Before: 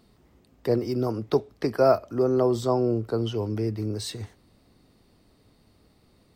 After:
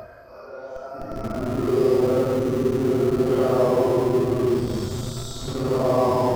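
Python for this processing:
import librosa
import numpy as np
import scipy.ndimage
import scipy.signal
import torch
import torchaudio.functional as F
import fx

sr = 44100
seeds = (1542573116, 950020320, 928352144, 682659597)

p1 = fx.echo_banded(x, sr, ms=250, feedback_pct=68, hz=1500.0, wet_db=-13.5)
p2 = fx.paulstretch(p1, sr, seeds[0], factor=8.4, window_s=0.05, from_s=1.99)
p3 = fx.echo_thinned(p2, sr, ms=373, feedback_pct=73, hz=400.0, wet_db=-15.5)
p4 = fx.schmitt(p3, sr, flips_db=-25.0)
y = p3 + (p4 * librosa.db_to_amplitude(-10.0))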